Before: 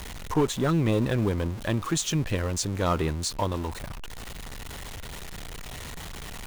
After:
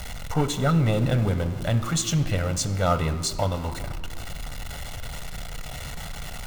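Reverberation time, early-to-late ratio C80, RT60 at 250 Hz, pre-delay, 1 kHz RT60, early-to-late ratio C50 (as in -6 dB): 1.8 s, 14.5 dB, 2.8 s, 7 ms, 1.7 s, 13.0 dB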